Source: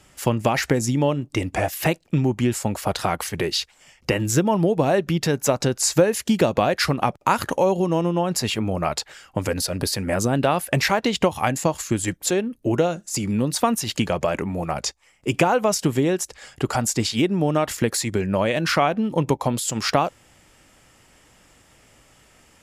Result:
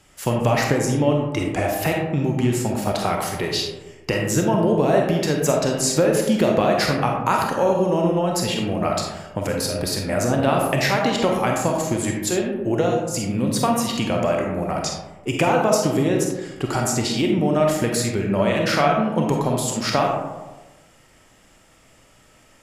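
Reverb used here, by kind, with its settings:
comb and all-pass reverb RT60 1.2 s, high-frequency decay 0.35×, pre-delay 5 ms, DRR 0 dB
level −2 dB

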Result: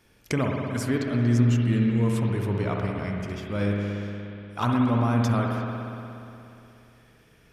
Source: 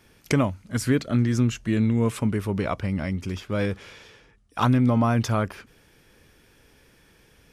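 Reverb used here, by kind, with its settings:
spring reverb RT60 2.9 s, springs 59 ms, chirp 65 ms, DRR −0.5 dB
level −4.5 dB

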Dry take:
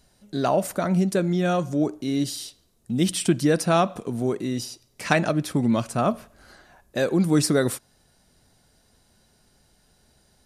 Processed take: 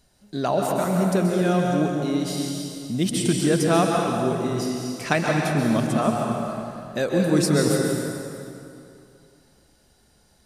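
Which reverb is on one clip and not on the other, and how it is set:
dense smooth reverb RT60 2.6 s, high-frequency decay 0.8×, pre-delay 115 ms, DRR −0.5 dB
level −1.5 dB

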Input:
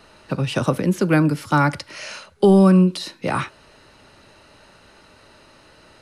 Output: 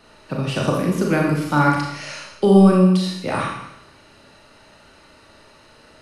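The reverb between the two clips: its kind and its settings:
four-comb reverb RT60 0.83 s, combs from 27 ms, DRR −1.5 dB
level −3 dB

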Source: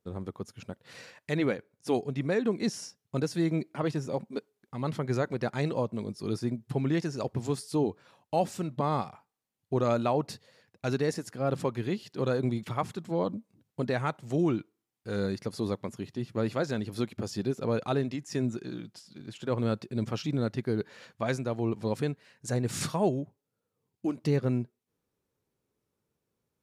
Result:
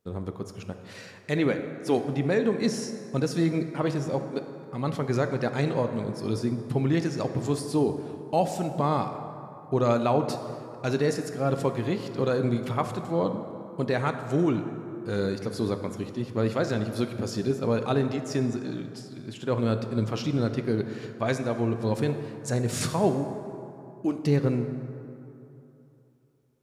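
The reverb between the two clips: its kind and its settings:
dense smooth reverb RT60 3 s, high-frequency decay 0.45×, DRR 7 dB
level +3 dB

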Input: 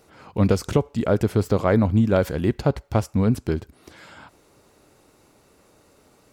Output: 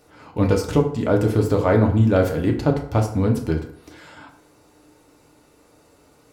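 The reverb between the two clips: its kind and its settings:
feedback delay network reverb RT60 0.64 s, low-frequency decay 0.85×, high-frequency decay 0.6×, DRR 1 dB
level −1 dB

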